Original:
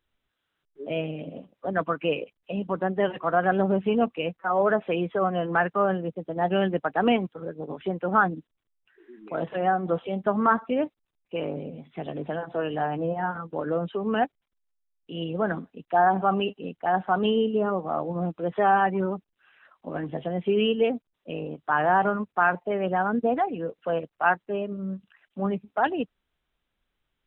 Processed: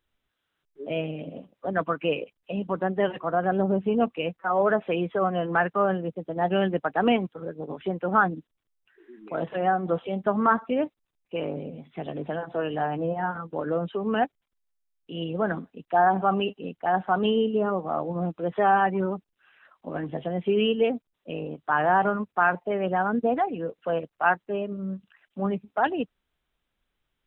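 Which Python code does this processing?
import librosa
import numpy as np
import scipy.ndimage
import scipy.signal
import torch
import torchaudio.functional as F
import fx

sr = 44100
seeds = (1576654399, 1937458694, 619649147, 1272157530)

y = fx.peak_eq(x, sr, hz=2300.0, db=-7.5, octaves=2.2, at=(3.22, 4.0))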